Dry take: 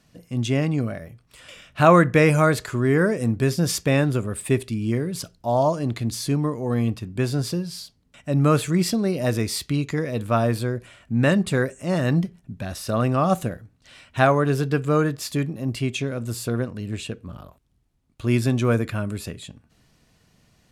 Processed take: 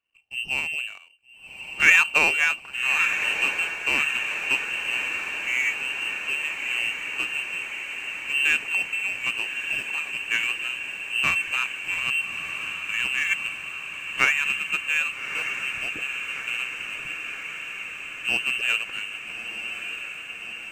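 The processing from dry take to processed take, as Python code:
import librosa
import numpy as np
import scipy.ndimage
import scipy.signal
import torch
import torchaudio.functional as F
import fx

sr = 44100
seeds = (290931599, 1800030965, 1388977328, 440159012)

y = fx.freq_invert(x, sr, carrier_hz=2900)
y = fx.power_curve(y, sr, exponent=1.4)
y = fx.echo_diffused(y, sr, ms=1238, feedback_pct=74, wet_db=-8)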